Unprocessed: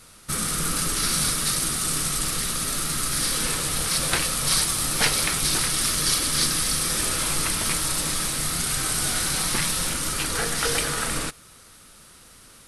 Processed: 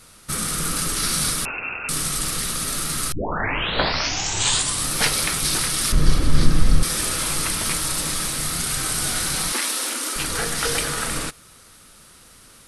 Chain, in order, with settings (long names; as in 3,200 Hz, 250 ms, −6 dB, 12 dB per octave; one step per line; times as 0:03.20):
0:01.45–0:01.89: voice inversion scrambler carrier 2,700 Hz
0:03.12: tape start 1.77 s
0:05.92–0:06.83: spectral tilt −4 dB per octave
0:09.52–0:10.16: Butterworth high-pass 230 Hz 96 dB per octave
level +1 dB